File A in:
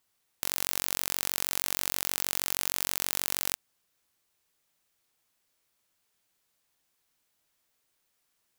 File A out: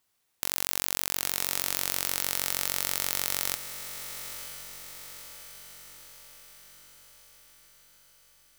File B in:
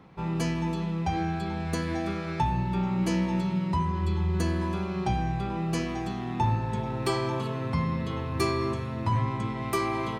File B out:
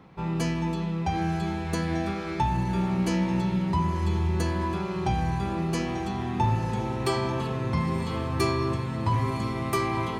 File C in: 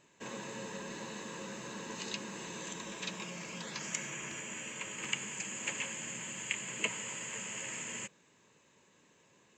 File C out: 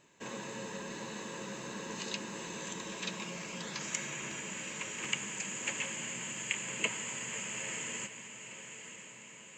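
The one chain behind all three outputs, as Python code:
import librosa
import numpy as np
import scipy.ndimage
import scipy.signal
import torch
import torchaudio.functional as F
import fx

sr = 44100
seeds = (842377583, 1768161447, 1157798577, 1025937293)

y = fx.echo_diffused(x, sr, ms=961, feedback_pct=56, wet_db=-10)
y = y * librosa.db_to_amplitude(1.0)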